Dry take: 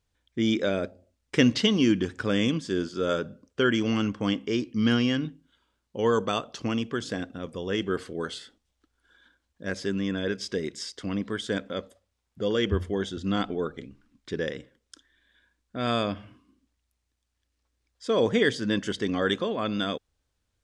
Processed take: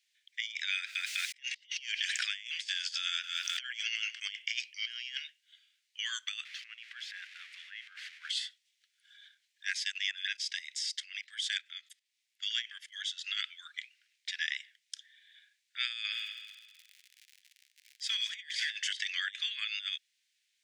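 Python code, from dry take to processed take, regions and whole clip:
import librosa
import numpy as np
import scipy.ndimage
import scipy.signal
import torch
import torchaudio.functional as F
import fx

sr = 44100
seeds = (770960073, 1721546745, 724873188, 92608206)

y = fx.chain(x, sr, fx.echo_feedback(ms=201, feedback_pct=21, wet_db=-22.0),
    fx.pre_swell(db_per_s=22.0), at=(0.75, 4.2))
y = fx.chain(y, sr, fx.crossing_spikes(level_db=-26.0),
    fx.lowpass(hz=1400.0, slope=12),
    fx.over_compress(threshold_db=-33.0, ratio=-1.0), at=(6.45, 8.3))
y = fx.chain(y, sr, fx.high_shelf(hz=3200.0, db=3.0),
    fx.level_steps(step_db=14), at=(9.73, 13.19))
y = fx.echo_heads(y, sr, ms=67, heads='first and third', feedback_pct=50, wet_db=-14, at=(16.11, 18.75), fade=0.02)
y = fx.dmg_crackle(y, sr, seeds[0], per_s=110.0, level_db=-46.0, at=(16.11, 18.75), fade=0.02)
y = scipy.signal.sosfilt(scipy.signal.butter(8, 1900.0, 'highpass', fs=sr, output='sos'), y)
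y = fx.high_shelf(y, sr, hz=6200.0, db=-9.5)
y = fx.over_compress(y, sr, threshold_db=-42.0, ratio=-0.5)
y = F.gain(torch.from_numpy(y), 6.0).numpy()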